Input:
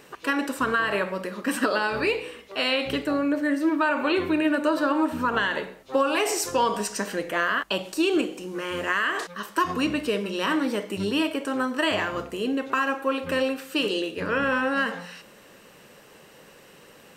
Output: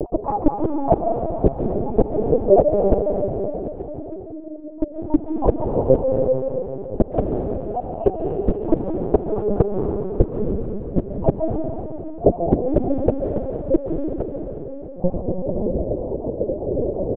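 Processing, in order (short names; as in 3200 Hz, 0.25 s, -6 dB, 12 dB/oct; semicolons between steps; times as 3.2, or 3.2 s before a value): random spectral dropouts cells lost 49%; elliptic low-pass 640 Hz, stop band 60 dB; compressor 4:1, threshold -28 dBFS, peak gain reduction 8.5 dB; flipped gate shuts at -30 dBFS, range -39 dB; feedback echo 0.501 s, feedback 37%, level -21.5 dB; on a send at -1.5 dB: reverb RT60 3.4 s, pre-delay 0.1 s; on the sum: LPC vocoder at 8 kHz pitch kept; maximiser +33 dB; gain -1 dB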